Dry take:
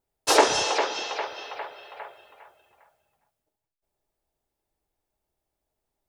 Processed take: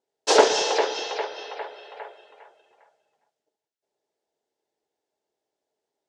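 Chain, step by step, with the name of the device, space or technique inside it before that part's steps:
full-range speaker at full volume (highs frequency-modulated by the lows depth 0.28 ms; loudspeaker in its box 280–7,500 Hz, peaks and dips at 440 Hz +7 dB, 1,200 Hz −7 dB, 2,400 Hz −4 dB)
level +1.5 dB

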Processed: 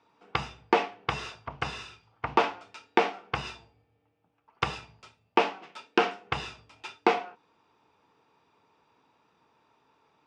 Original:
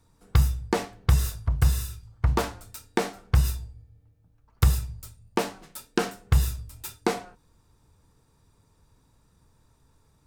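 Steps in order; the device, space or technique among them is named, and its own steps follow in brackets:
phone earpiece (loudspeaker in its box 400–4,200 Hz, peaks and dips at 550 Hz −4 dB, 820 Hz +3 dB, 1,700 Hz −4 dB, 2,600 Hz +5 dB, 4,100 Hz −8 dB)
level +5 dB

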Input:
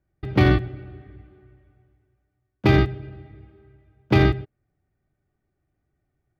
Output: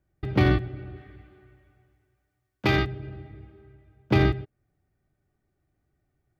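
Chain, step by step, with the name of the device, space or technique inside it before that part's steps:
parallel compression (in parallel at −1 dB: downward compressor, threshold −28 dBFS, peak gain reduction 15.5 dB)
0:00.96–0:02.85: on the sum: tilt shelving filter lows −4.5 dB, about 730 Hz
level −5 dB

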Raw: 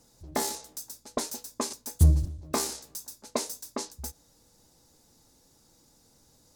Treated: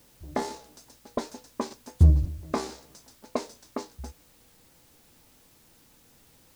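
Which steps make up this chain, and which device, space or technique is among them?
cassette deck with a dirty head (head-to-tape spacing loss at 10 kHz 21 dB; tape wow and flutter; white noise bed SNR 31 dB)
level +2.5 dB

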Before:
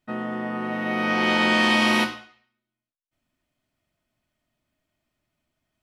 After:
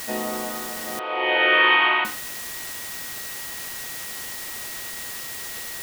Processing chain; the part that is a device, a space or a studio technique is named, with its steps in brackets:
shortwave radio (band-pass filter 350–2,900 Hz; amplitude tremolo 0.63 Hz, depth 77%; auto-filter notch sine 0.35 Hz 460–2,400 Hz; steady tone 1,900 Hz −48 dBFS; white noise bed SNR 9 dB)
0:00.99–0:02.05: elliptic band-pass filter 380–3,200 Hz, stop band 40 dB
level +7.5 dB

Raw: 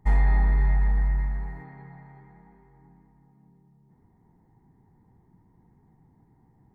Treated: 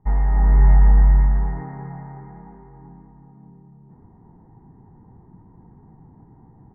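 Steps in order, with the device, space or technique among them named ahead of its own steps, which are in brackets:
action camera in a waterproof case (low-pass filter 1,500 Hz 24 dB per octave; automatic gain control gain up to 12 dB; AAC 96 kbit/s 32,000 Hz)

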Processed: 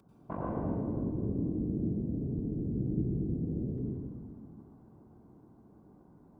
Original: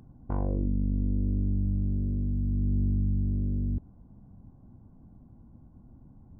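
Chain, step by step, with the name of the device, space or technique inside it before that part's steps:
whispering ghost (random phases in short frames; high-pass filter 480 Hz 6 dB per octave; convolution reverb RT60 2.1 s, pre-delay 86 ms, DRR −2.5 dB)

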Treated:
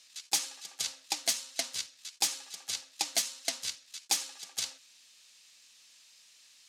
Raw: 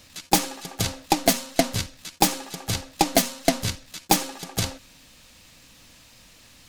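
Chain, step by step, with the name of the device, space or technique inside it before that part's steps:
piezo pickup straight into a mixer (low-pass filter 6,400 Hz 12 dB per octave; first difference)

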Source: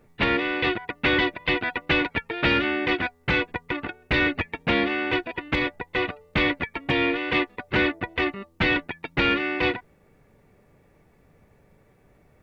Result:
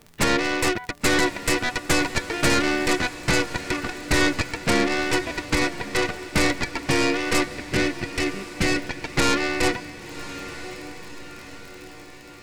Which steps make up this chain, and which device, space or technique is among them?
treble cut that deepens with the level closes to 2,900 Hz, closed at −18 dBFS
0:07.49–0:08.85: parametric band 1,000 Hz −13.5 dB 1 octave
record under a worn stylus (stylus tracing distortion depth 0.23 ms; surface crackle 40 per second −33 dBFS; pink noise bed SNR 36 dB)
feedback delay with all-pass diffusion 1,082 ms, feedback 53%, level −13 dB
level +2 dB

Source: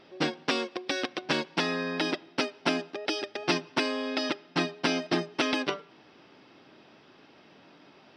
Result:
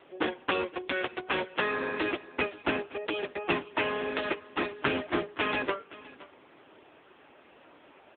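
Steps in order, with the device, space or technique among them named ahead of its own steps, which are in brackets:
dynamic equaliser 650 Hz, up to −5 dB, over −51 dBFS, Q 5
satellite phone (band-pass filter 350–3,100 Hz; single-tap delay 517 ms −19.5 dB; level +5 dB; AMR narrowband 6.7 kbit/s 8,000 Hz)

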